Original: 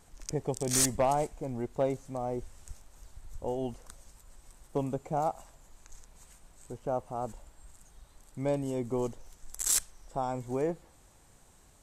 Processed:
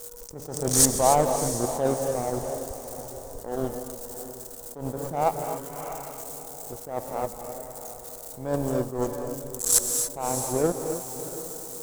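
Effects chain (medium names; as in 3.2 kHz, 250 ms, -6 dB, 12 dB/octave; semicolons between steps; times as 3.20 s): zero-crossing glitches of -34 dBFS; whistle 480 Hz -41 dBFS; in parallel at -6 dB: saturation -25.5 dBFS, distortion -13 dB; on the sum: power-law waveshaper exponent 2; on a send: echo that smears into a reverb 687 ms, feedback 42%, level -13 dB; on the sum: time-frequency box 5.42–6.22 s, 930–3300 Hz +6 dB; peaking EQ 2.4 kHz -11 dB 1.3 oct; gated-style reverb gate 310 ms rising, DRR 8.5 dB; loudness maximiser +18 dB; attacks held to a fixed rise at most 110 dB/s; trim -6 dB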